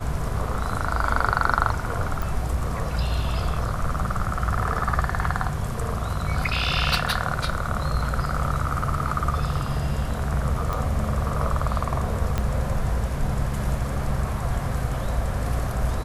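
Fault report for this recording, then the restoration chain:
2.22 s: pop
10.73 s: pop
12.38 s: pop -11 dBFS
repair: de-click

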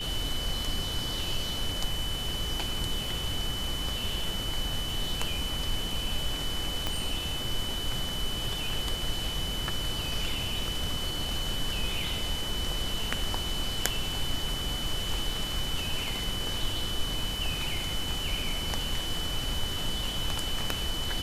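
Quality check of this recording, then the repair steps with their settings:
crackle 24 per s -38 dBFS
whine 3 kHz -34 dBFS
6.87 s: pop -15 dBFS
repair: de-click; band-stop 3 kHz, Q 30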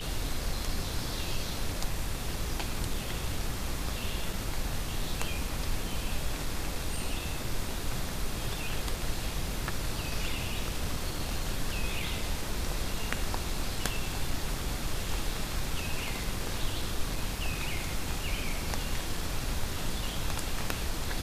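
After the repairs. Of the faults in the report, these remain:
6.87 s: pop

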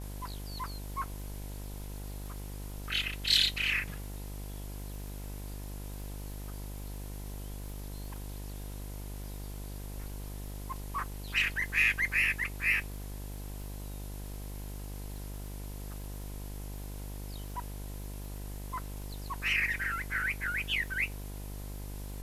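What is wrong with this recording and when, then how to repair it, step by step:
buzz 50 Hz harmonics 21 -41 dBFS
crackle 45 per s -43 dBFS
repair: de-click; de-hum 50 Hz, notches 21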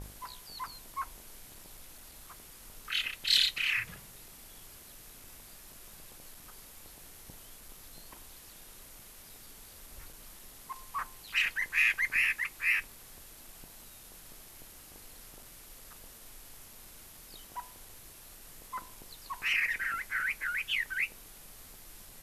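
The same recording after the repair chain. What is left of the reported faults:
nothing left

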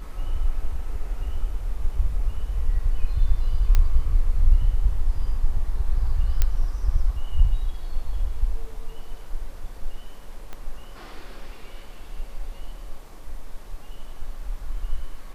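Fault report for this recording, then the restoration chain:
3.75 s: pop -9 dBFS
6.42 s: pop -7 dBFS
10.53 s: pop -21 dBFS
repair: de-click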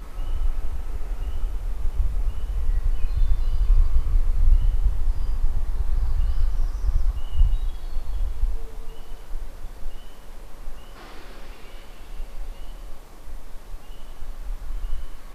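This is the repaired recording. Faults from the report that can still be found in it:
10.53 s: pop

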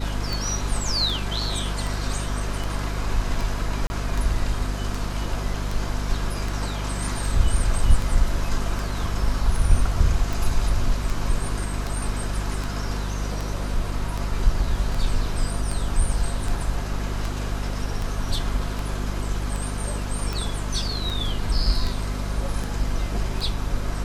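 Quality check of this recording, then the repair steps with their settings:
hum 50 Hz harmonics 5 -28 dBFS
tick 78 rpm
3.87–3.90 s: dropout 30 ms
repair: de-click; de-hum 50 Hz, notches 5; interpolate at 3.87 s, 30 ms

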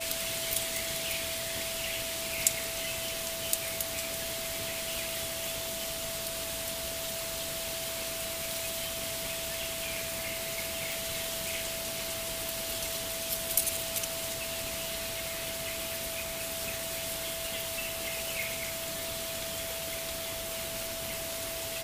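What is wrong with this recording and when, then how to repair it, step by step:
whine 660 Hz -40 dBFS
0.77 s: pop
8.54 s: pop
10.92 s: pop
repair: de-click; band-stop 660 Hz, Q 30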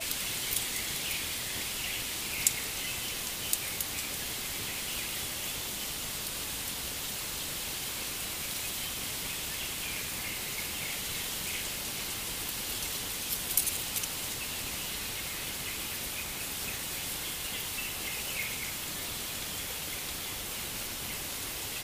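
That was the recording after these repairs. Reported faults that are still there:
nothing left

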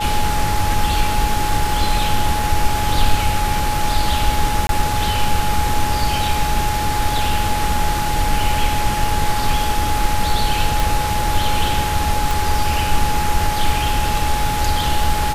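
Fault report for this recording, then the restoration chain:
whine 840 Hz -21 dBFS
4.67–4.69 s: dropout 22 ms
10.80 s: pop
12.31 s: pop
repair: de-click; band-stop 840 Hz, Q 30; interpolate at 4.67 s, 22 ms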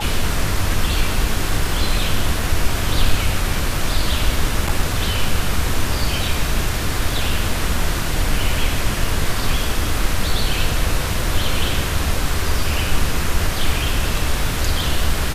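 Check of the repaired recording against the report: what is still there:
nothing left

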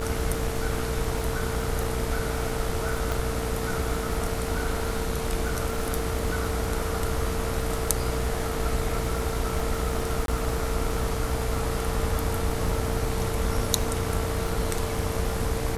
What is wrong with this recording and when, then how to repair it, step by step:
buzz 60 Hz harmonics 39 -32 dBFS
crackle 34 per s -31 dBFS
whine 450 Hz -33 dBFS
3.12 s: pop
10.26–10.28 s: dropout 22 ms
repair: de-click; band-stop 450 Hz, Q 30; de-hum 60 Hz, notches 39; interpolate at 10.26 s, 22 ms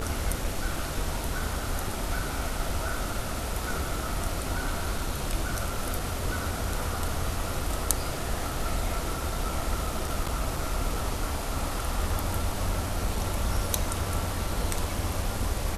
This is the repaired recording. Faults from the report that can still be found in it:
nothing left

